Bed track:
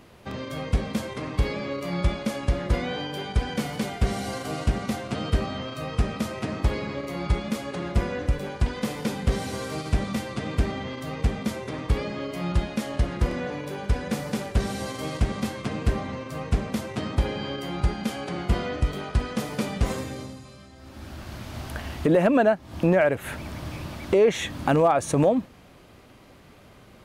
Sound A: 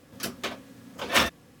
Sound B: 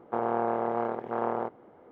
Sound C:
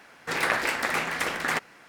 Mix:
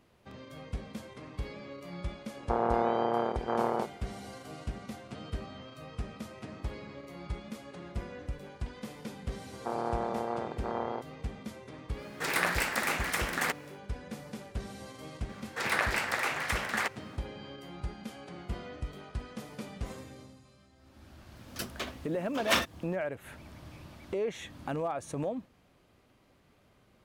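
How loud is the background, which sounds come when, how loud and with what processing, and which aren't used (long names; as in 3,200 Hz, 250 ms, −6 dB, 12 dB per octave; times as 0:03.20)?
bed track −14 dB
0:02.37: mix in B
0:09.53: mix in B −5 dB
0:11.93: mix in C −4.5 dB, fades 0.10 s + high-shelf EQ 8,400 Hz +9.5 dB
0:15.29: mix in C −4 dB + high-pass filter 360 Hz
0:21.36: mix in A −5 dB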